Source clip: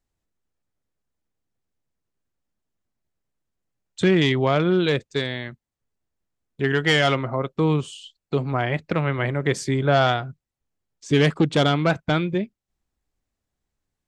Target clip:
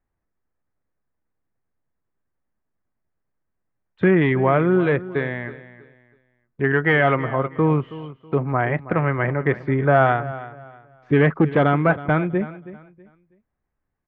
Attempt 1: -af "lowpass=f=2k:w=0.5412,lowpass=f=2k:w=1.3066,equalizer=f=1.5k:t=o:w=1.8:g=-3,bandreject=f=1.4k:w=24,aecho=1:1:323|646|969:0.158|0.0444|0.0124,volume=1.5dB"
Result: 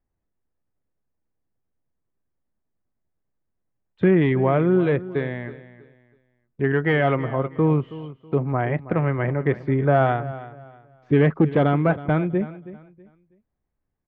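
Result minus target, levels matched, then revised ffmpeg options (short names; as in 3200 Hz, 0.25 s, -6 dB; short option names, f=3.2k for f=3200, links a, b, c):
2000 Hz band -4.5 dB
-af "lowpass=f=2k:w=0.5412,lowpass=f=2k:w=1.3066,equalizer=f=1.5k:t=o:w=1.8:g=3.5,bandreject=f=1.4k:w=24,aecho=1:1:323|646|969:0.158|0.0444|0.0124,volume=1.5dB"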